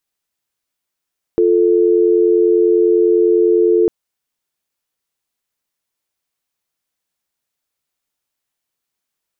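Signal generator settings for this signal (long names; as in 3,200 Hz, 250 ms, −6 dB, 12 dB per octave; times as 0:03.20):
call progress tone dial tone, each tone −12 dBFS 2.50 s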